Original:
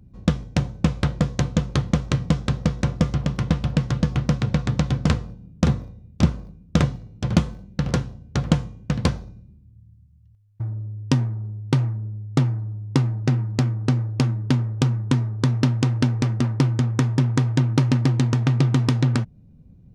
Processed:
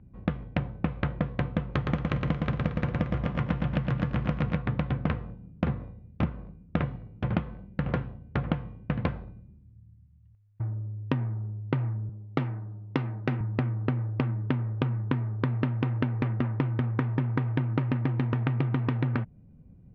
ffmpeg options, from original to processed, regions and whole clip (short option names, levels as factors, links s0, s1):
-filter_complex "[0:a]asettb=1/sr,asplit=3[s0][s1][s2];[s0]atrim=end=1.734[s3];[s1]atrim=start=1.73:end=4.55,asetpts=PTS-STARTPTS,afade=t=in:d=0.004:c=qsin,afade=t=out:st=2.816:d=0.004:c=qsin,lowpass=f=7100:t=q:w=4.1,aecho=1:1:114|228|342|456|570|684:0.631|0.284|0.128|0.0575|0.0259|0.0116,atrim=end_sample=124362[s4];[s2]atrim=start=4.546[s5];[s3][s4]acrossfade=d=0.004:c1=hsin:c2=qsin[s6];[s6][s5]acrossfade=d=0.004:c1=qsin:c2=hsin,asettb=1/sr,asplit=3[s7][s8][s9];[s7]atrim=end=12.094[s10];[s8]atrim=start=12.09:end=13.41,asetpts=PTS-STARTPTS,afade=t=in:d=0.004:c=qsin,afade=t=out:st=1.316:d=0.004:c=qsin,highpass=140,aemphasis=mode=production:type=75kf[s11];[s9]atrim=start=13.406[s12];[s10][s11]acrossfade=d=0.004:c1=hsin:c2=qsin[s13];[s13][s12]acrossfade=d=0.004:c1=qsin:c2=hsin,lowpass=f=2500:w=0.5412,lowpass=f=2500:w=1.3066,lowshelf=f=370:g=-4,acompressor=threshold=0.0708:ratio=6"